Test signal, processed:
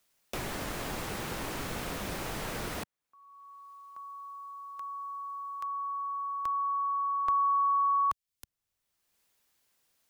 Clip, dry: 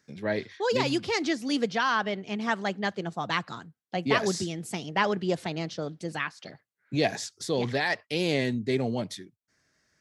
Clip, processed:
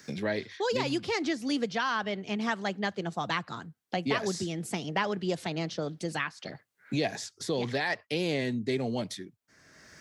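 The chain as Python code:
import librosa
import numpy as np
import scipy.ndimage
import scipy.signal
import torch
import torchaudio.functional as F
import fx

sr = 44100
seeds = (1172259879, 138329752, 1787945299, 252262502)

y = fx.band_squash(x, sr, depth_pct=70)
y = y * 10.0 ** (-3.0 / 20.0)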